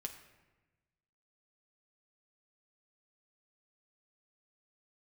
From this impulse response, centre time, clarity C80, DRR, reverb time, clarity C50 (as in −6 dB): 18 ms, 11.0 dB, 3.5 dB, 1.2 s, 9.0 dB